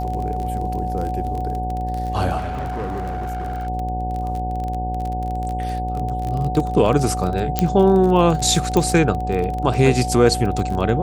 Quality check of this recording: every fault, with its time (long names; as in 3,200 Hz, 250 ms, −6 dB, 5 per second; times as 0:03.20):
mains buzz 60 Hz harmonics 15 −26 dBFS
surface crackle 26 per second −24 dBFS
whistle 740 Hz −25 dBFS
0:02.37–0:03.68: clipping −22.5 dBFS
0:07.59: click −3 dBFS
0:08.77: click −6 dBFS